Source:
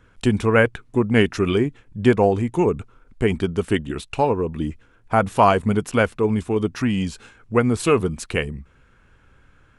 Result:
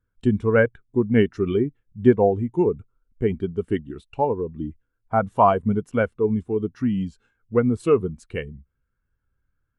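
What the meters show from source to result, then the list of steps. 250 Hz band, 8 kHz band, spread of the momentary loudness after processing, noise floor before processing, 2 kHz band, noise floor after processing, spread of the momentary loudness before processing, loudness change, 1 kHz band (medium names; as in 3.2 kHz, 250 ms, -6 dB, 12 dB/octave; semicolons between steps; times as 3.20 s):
-1.5 dB, under -15 dB, 14 LU, -56 dBFS, -6.0 dB, -76 dBFS, 9 LU, -1.5 dB, -2.0 dB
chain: band-stop 2.5 kHz, Q 18; spectral contrast expander 1.5:1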